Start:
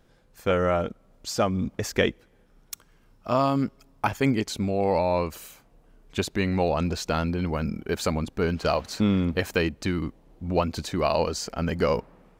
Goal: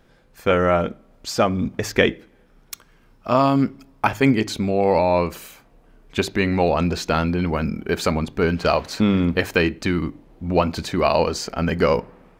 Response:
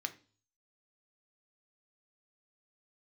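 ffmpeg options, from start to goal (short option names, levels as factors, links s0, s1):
-filter_complex "[0:a]asplit=2[s0][s1];[1:a]atrim=start_sample=2205,lowpass=5000[s2];[s1][s2]afir=irnorm=-1:irlink=0,volume=0.562[s3];[s0][s3]amix=inputs=2:normalize=0,volume=1.41"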